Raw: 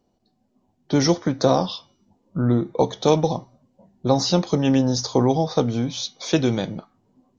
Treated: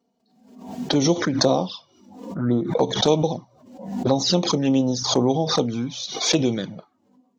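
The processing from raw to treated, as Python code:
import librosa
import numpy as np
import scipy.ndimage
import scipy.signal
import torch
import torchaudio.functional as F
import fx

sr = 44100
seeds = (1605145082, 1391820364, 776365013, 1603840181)

y = scipy.signal.sosfilt(scipy.signal.butter(2, 150.0, 'highpass', fs=sr, output='sos'), x)
y = fx.env_flanger(y, sr, rest_ms=4.4, full_db=-16.0)
y = fx.pre_swell(y, sr, db_per_s=71.0)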